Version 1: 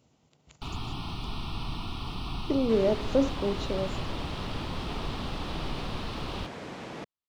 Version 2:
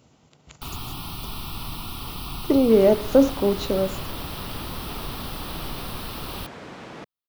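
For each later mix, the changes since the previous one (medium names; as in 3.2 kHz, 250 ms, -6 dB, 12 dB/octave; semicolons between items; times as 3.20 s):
speech +8.5 dB; first sound: remove distance through air 120 m; master: add peaking EQ 1.4 kHz +3 dB 0.77 oct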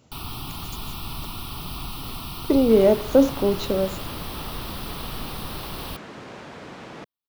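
first sound: entry -0.50 s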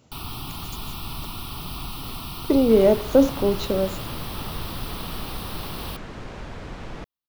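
second sound: remove high-pass 180 Hz 12 dB/octave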